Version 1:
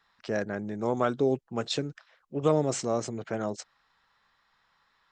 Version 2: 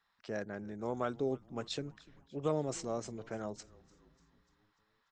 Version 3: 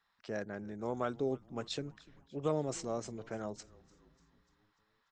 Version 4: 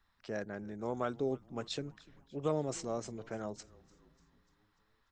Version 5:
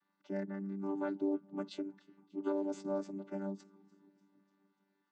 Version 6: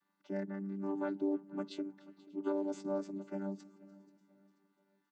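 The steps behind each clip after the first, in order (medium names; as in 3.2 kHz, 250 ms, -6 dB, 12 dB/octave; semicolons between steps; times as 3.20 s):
frequency-shifting echo 295 ms, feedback 60%, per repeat -130 Hz, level -22 dB; trim -9 dB
no audible change
added noise brown -77 dBFS
vocoder on a held chord bare fifth, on G3; trim +1 dB
feedback delay 484 ms, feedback 41%, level -21 dB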